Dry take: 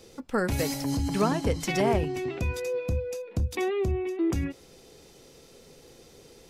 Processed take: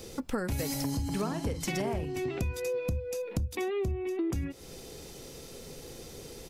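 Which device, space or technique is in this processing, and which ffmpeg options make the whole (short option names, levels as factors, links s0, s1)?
ASMR close-microphone chain: -filter_complex "[0:a]asplit=3[s0][s1][s2];[s0]afade=t=out:st=0.83:d=0.02[s3];[s1]asplit=2[s4][s5];[s5]adelay=48,volume=0.282[s6];[s4][s6]amix=inputs=2:normalize=0,afade=t=in:st=0.83:d=0.02,afade=t=out:st=2.16:d=0.02[s7];[s2]afade=t=in:st=2.16:d=0.02[s8];[s3][s7][s8]amix=inputs=3:normalize=0,lowshelf=f=170:g=5.5,acompressor=threshold=0.0178:ratio=6,highshelf=f=8800:g=7.5,volume=1.78"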